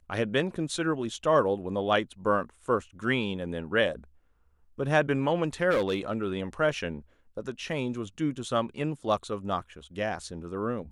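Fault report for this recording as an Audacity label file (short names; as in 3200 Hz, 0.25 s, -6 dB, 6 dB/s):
5.700000	6.240000	clipped -21.5 dBFS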